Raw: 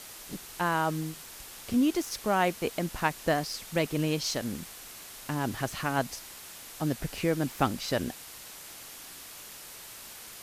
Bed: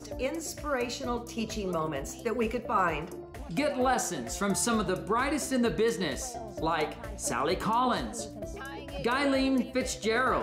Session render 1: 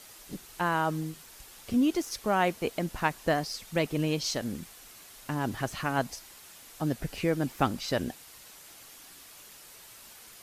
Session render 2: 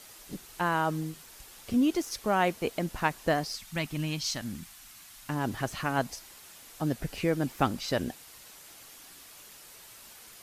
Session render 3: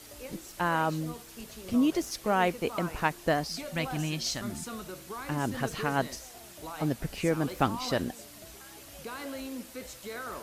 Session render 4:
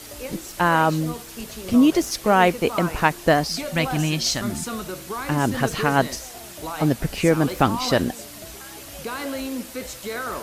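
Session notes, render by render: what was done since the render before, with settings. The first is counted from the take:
broadband denoise 6 dB, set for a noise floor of −46 dBFS
0:03.55–0:05.30: parametric band 460 Hz −15 dB 0.87 octaves
mix in bed −12.5 dB
level +9.5 dB; brickwall limiter −3 dBFS, peak gain reduction 2.5 dB

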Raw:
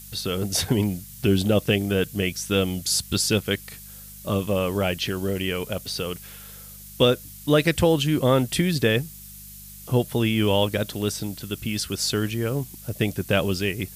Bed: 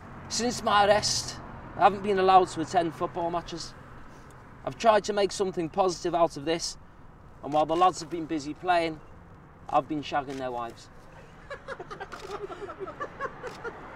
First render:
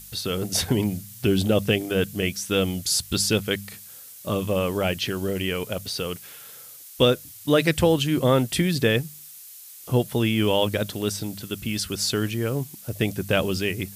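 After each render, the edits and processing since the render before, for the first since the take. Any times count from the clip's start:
hum removal 50 Hz, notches 4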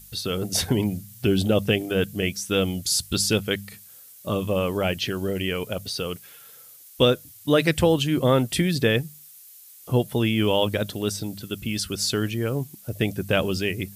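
broadband denoise 6 dB, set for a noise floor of −44 dBFS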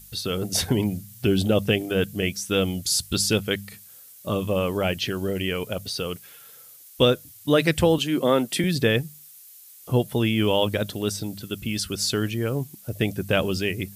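0:07.98–0:08.64: high-pass filter 180 Hz 24 dB per octave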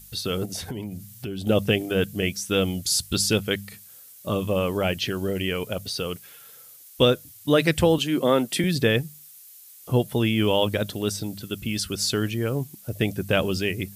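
0:00.45–0:01.47: downward compressor 3 to 1, threshold −32 dBFS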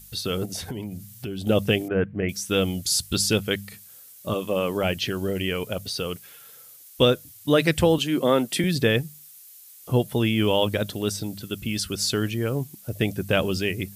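0:01.88–0:02.29: Butterworth low-pass 2,200 Hz
0:04.33–0:04.82: high-pass filter 300 Hz → 110 Hz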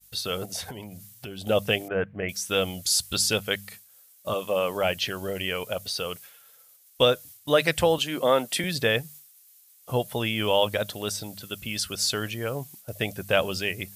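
downward expander −40 dBFS
low shelf with overshoot 450 Hz −7 dB, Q 1.5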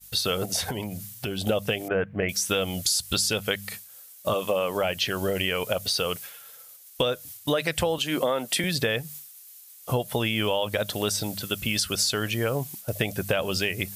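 in parallel at +3 dB: brickwall limiter −14.5 dBFS, peak gain reduction 8 dB
on the sum: downward compressor 6 to 1, threshold −22 dBFS, peak gain reduction 12 dB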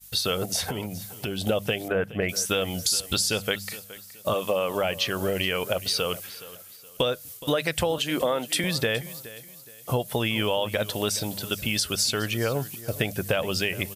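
repeating echo 420 ms, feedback 32%, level −17.5 dB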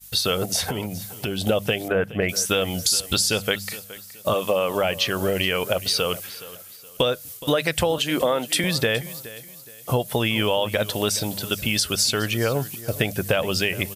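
level +3.5 dB

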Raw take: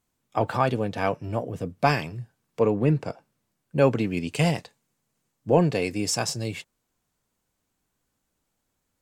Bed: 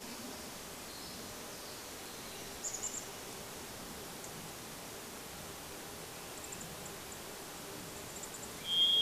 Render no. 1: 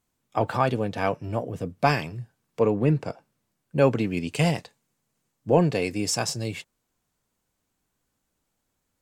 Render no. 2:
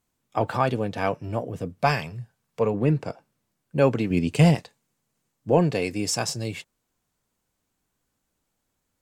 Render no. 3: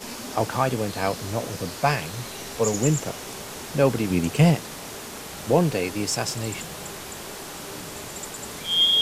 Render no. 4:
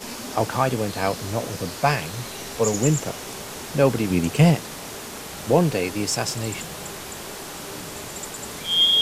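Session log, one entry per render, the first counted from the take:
no processing that can be heard
0:01.82–0:02.74: parametric band 310 Hz −11.5 dB 0.4 octaves; 0:04.10–0:04.55: low-shelf EQ 470 Hz +7.5 dB
mix in bed +10 dB
level +1.5 dB

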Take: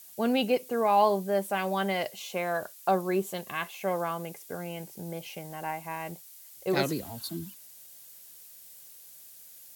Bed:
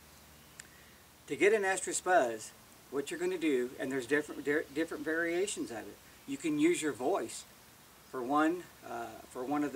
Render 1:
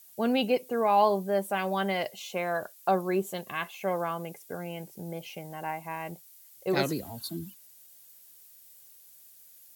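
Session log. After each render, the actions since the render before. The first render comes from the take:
broadband denoise 6 dB, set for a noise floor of −51 dBFS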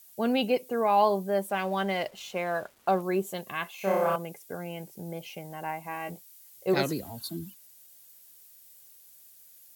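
0:01.49–0:03.02: slack as between gear wheels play −45.5 dBFS
0:03.75–0:04.16: flutter between parallel walls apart 5.3 metres, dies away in 0.95 s
0:05.85–0:06.74: double-tracking delay 16 ms −5.5 dB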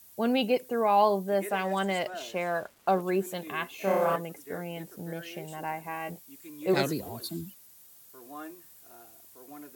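mix in bed −13.5 dB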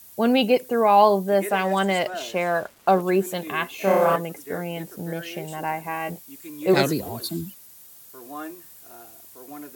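level +7 dB

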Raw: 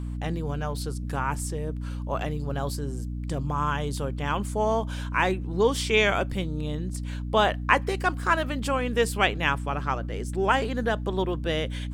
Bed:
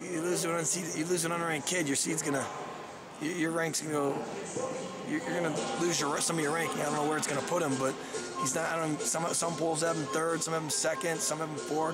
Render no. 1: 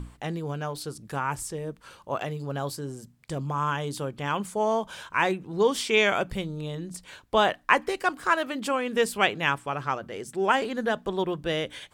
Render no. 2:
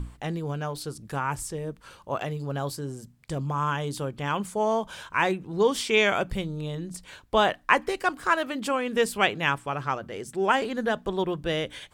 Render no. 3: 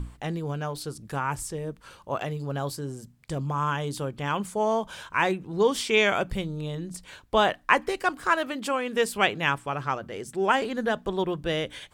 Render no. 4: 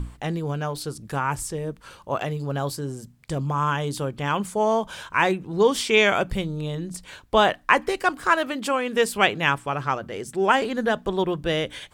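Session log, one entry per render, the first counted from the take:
mains-hum notches 60/120/180/240/300 Hz
low-shelf EQ 88 Hz +6.5 dB
0:08.54–0:09.15: low-shelf EQ 170 Hz −7.5 dB
level +3.5 dB; brickwall limiter −2 dBFS, peak gain reduction 1.5 dB

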